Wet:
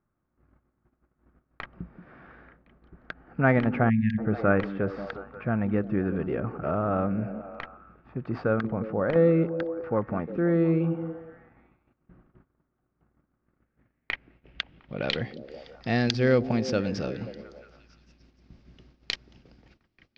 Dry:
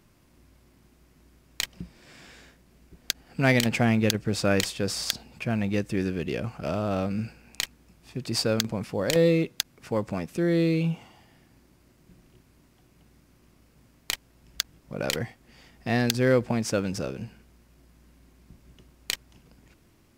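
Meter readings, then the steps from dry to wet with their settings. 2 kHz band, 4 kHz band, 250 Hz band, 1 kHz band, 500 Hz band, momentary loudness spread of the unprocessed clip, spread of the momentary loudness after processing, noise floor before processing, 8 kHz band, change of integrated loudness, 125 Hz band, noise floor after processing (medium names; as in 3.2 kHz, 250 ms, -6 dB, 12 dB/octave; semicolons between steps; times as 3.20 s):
-1.5 dB, -7.0 dB, +0.5 dB, +2.5 dB, +0.5 dB, 11 LU, 19 LU, -61 dBFS, under -15 dB, 0.0 dB, 0.0 dB, -78 dBFS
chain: band-stop 1 kHz, Q 8.9; repeats whose band climbs or falls 177 ms, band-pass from 240 Hz, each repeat 0.7 oct, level -7.5 dB; gate -55 dBFS, range -18 dB; treble shelf 10 kHz +7.5 dB; low-pass sweep 1.3 kHz -> 5.2 kHz, 13.33–15.63 s; distance through air 210 m; spectral selection erased 3.90–4.18 s, 250–1600 Hz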